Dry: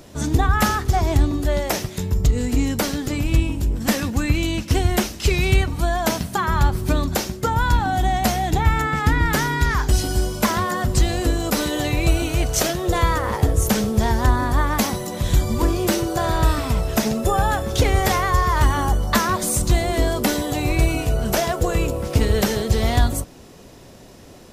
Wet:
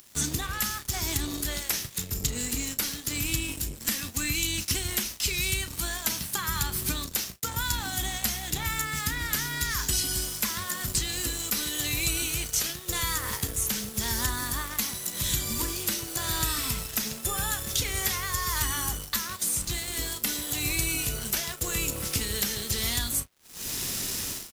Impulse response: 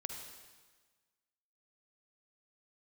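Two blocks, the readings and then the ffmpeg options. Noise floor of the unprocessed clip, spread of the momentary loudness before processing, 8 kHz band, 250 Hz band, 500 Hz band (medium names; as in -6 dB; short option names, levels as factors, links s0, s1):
-43 dBFS, 4 LU, +1.5 dB, -14.5 dB, -17.5 dB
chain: -filter_complex "[0:a]equalizer=f=650:w=1.3:g=-11,crystalizer=i=8:c=0,dynaudnorm=f=130:g=5:m=3.76,asplit=2[s0][s1];[s1]acrusher=bits=3:mix=0:aa=0.5,volume=0.501[s2];[s0][s2]amix=inputs=2:normalize=0,aeval=exprs='sgn(val(0))*max(abs(val(0))-0.02,0)':c=same,acrossover=split=140|4200[s3][s4][s5];[s3]acompressor=threshold=0.0501:ratio=4[s6];[s4]acompressor=threshold=0.0708:ratio=4[s7];[s5]acompressor=threshold=0.0891:ratio=4[s8];[s6][s7][s8]amix=inputs=3:normalize=0,asplit=2[s9][s10];[s10]adelay=34,volume=0.211[s11];[s9][s11]amix=inputs=2:normalize=0,volume=0.398"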